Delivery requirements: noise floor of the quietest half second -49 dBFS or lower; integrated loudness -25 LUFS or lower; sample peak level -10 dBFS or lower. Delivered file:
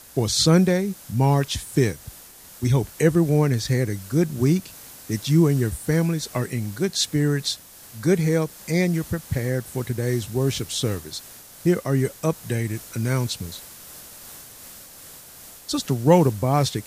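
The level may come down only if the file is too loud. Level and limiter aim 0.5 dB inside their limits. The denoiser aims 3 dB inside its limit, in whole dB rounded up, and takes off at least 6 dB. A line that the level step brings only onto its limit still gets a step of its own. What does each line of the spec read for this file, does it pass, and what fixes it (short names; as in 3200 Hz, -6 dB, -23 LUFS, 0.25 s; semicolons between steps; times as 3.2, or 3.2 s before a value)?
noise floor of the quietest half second -45 dBFS: fail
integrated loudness -22.5 LUFS: fail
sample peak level -3.0 dBFS: fail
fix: denoiser 6 dB, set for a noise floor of -45 dBFS; gain -3 dB; limiter -10.5 dBFS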